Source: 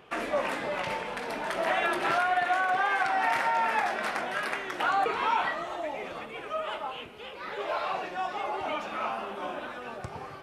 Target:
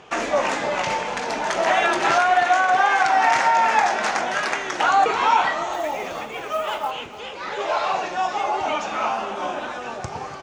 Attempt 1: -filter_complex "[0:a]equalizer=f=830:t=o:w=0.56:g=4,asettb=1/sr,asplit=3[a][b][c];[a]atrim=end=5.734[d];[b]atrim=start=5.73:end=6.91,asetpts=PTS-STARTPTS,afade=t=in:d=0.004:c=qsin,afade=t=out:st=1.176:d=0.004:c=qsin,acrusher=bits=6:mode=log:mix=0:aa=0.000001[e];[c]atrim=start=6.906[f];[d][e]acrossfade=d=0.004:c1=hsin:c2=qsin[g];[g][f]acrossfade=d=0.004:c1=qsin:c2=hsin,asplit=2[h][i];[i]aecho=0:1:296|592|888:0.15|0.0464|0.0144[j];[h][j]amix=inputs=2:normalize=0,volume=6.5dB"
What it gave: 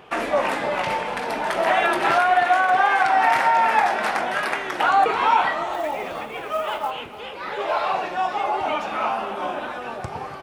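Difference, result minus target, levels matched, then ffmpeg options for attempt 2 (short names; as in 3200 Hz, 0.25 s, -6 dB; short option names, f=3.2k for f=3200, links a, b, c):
8000 Hz band -8.0 dB
-filter_complex "[0:a]lowpass=f=6.6k:t=q:w=3.9,equalizer=f=830:t=o:w=0.56:g=4,asettb=1/sr,asplit=3[a][b][c];[a]atrim=end=5.734[d];[b]atrim=start=5.73:end=6.91,asetpts=PTS-STARTPTS,afade=t=in:d=0.004:c=qsin,afade=t=out:st=1.176:d=0.004:c=qsin,acrusher=bits=6:mode=log:mix=0:aa=0.000001[e];[c]atrim=start=6.906[f];[d][e]acrossfade=d=0.004:c1=hsin:c2=qsin[g];[g][f]acrossfade=d=0.004:c1=qsin:c2=hsin,asplit=2[h][i];[i]aecho=0:1:296|592|888:0.15|0.0464|0.0144[j];[h][j]amix=inputs=2:normalize=0,volume=6.5dB"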